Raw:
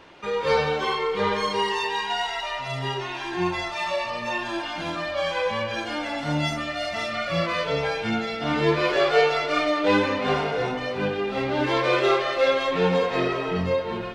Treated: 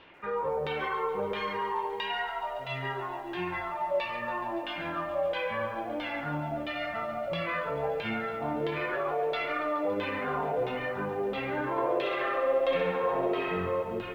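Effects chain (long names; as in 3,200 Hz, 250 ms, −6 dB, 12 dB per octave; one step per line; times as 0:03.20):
high-shelf EQ 2,400 Hz −2.5 dB
brickwall limiter −18.5 dBFS, peak gain reduction 11 dB
auto-filter low-pass saw down 1.5 Hz 520–3,400 Hz
0:11.71–0:13.83: flutter between parallel walls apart 11.1 metres, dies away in 0.97 s
feedback echo at a low word length 141 ms, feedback 80%, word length 8 bits, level −15 dB
level −7 dB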